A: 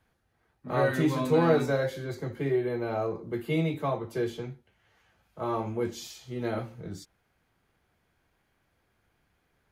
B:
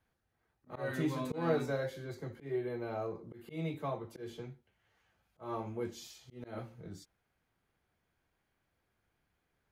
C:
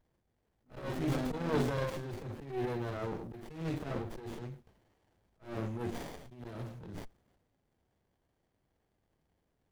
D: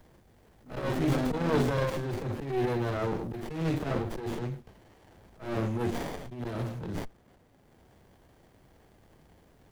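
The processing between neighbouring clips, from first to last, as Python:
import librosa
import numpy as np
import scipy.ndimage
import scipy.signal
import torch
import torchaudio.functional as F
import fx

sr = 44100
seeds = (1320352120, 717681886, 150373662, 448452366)

y1 = fx.auto_swell(x, sr, attack_ms=159.0)
y1 = y1 * 10.0 ** (-8.0 / 20.0)
y2 = fx.transient(y1, sr, attack_db=-11, sustain_db=7)
y2 = fx.high_shelf(y2, sr, hz=3400.0, db=9.5)
y2 = fx.running_max(y2, sr, window=33)
y2 = y2 * 10.0 ** (3.0 / 20.0)
y3 = fx.band_squash(y2, sr, depth_pct=40)
y3 = y3 * 10.0 ** (7.0 / 20.0)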